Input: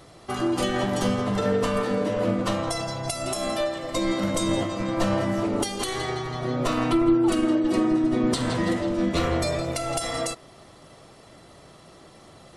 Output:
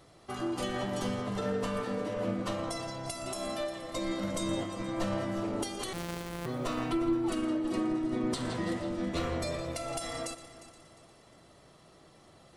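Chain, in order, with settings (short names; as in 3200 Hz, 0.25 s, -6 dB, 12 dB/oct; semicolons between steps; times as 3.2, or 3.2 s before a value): 5.93–6.46 sample sorter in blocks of 256 samples; multi-head echo 0.118 s, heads first and third, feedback 52%, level -16 dB; gain -9 dB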